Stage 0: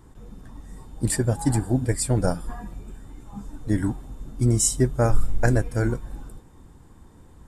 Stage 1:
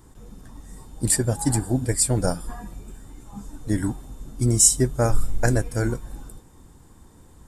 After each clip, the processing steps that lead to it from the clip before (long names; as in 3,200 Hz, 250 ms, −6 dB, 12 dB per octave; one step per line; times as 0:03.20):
bass and treble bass −1 dB, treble +7 dB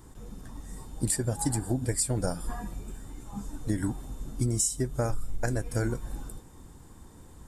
downward compressor 12 to 1, threshold −24 dBFS, peak gain reduction 14.5 dB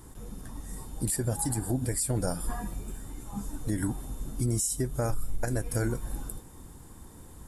parametric band 11,000 Hz +11.5 dB 0.3 octaves
brickwall limiter −21 dBFS, peak gain reduction 9.5 dB
level +1.5 dB